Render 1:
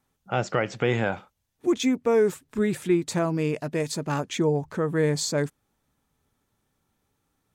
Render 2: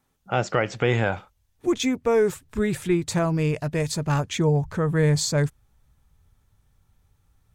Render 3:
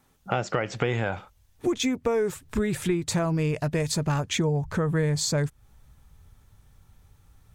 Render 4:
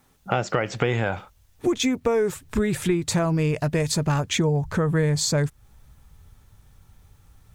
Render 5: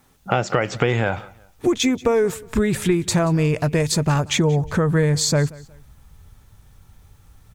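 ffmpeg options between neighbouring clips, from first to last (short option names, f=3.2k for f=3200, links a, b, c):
-af "asubboost=boost=10:cutoff=88,volume=2.5dB"
-af "acompressor=threshold=-31dB:ratio=4,volume=7dB"
-af "acrusher=bits=11:mix=0:aa=0.000001,volume=3dB"
-af "aecho=1:1:181|362:0.0794|0.0254,volume=3.5dB"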